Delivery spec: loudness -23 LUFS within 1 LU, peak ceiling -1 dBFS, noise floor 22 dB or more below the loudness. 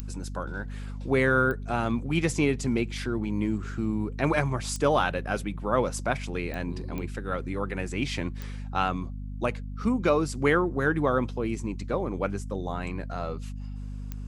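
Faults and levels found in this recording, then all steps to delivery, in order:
clicks found 7; hum 50 Hz; highest harmonic 250 Hz; hum level -33 dBFS; loudness -28.5 LUFS; peak level -8.5 dBFS; loudness target -23.0 LUFS
-> de-click; de-hum 50 Hz, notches 5; trim +5.5 dB

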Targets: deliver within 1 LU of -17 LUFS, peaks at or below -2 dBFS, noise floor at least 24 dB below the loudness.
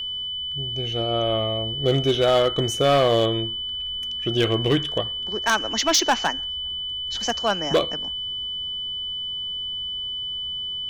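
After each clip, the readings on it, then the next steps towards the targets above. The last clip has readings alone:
clipped samples 0.6%; clipping level -12.5 dBFS; steady tone 3 kHz; tone level -27 dBFS; loudness -23.0 LUFS; peak level -12.5 dBFS; loudness target -17.0 LUFS
-> clip repair -12.5 dBFS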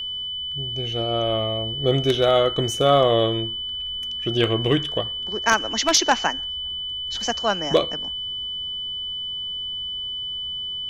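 clipped samples 0.0%; steady tone 3 kHz; tone level -27 dBFS
-> band-stop 3 kHz, Q 30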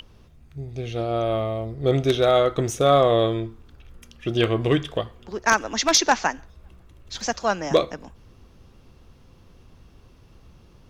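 steady tone not found; loudness -22.0 LUFS; peak level -3.0 dBFS; loudness target -17.0 LUFS
-> trim +5 dB; peak limiter -2 dBFS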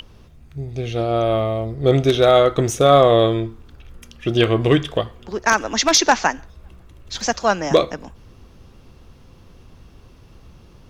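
loudness -17.5 LUFS; peak level -2.0 dBFS; noise floor -47 dBFS

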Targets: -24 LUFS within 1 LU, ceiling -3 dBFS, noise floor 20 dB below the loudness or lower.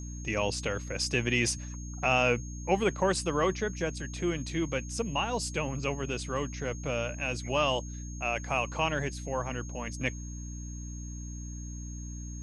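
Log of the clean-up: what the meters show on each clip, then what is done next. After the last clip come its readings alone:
hum 60 Hz; highest harmonic 300 Hz; hum level -37 dBFS; steady tone 6.5 kHz; tone level -47 dBFS; loudness -31.5 LUFS; peak level -12.0 dBFS; loudness target -24.0 LUFS
-> hum notches 60/120/180/240/300 Hz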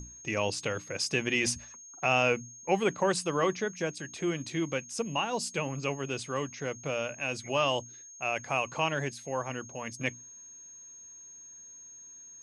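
hum not found; steady tone 6.5 kHz; tone level -47 dBFS
-> band-stop 6.5 kHz, Q 30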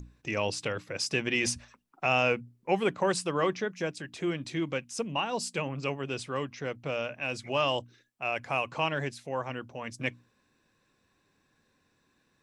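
steady tone not found; loudness -31.5 LUFS; peak level -12.5 dBFS; loudness target -24.0 LUFS
-> trim +7.5 dB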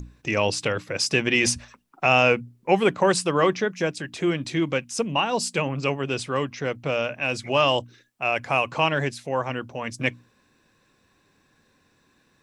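loudness -24.0 LUFS; peak level -5.0 dBFS; noise floor -65 dBFS

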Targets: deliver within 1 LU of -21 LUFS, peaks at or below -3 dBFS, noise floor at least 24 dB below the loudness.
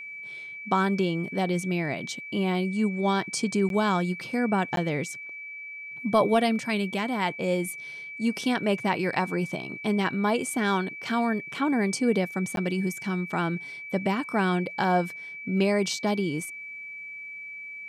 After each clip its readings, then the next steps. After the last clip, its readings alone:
dropouts 3; longest dropout 12 ms; steady tone 2.3 kHz; tone level -37 dBFS; loudness -27.5 LUFS; peak level -12.0 dBFS; loudness target -21.0 LUFS
-> interpolate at 3.69/4.76/12.56 s, 12 ms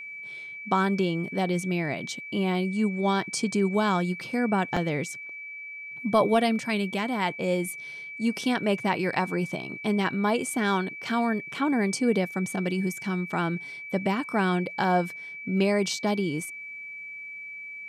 dropouts 0; steady tone 2.3 kHz; tone level -37 dBFS
-> band-stop 2.3 kHz, Q 30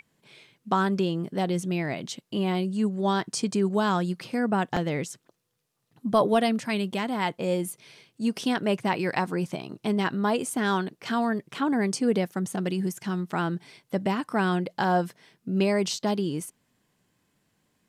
steady tone not found; loudness -27.5 LUFS; peak level -12.0 dBFS; loudness target -21.0 LUFS
-> trim +6.5 dB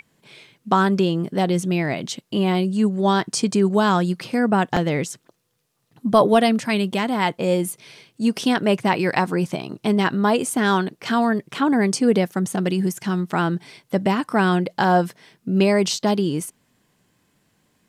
loudness -21.0 LUFS; peak level -5.5 dBFS; noise floor -68 dBFS

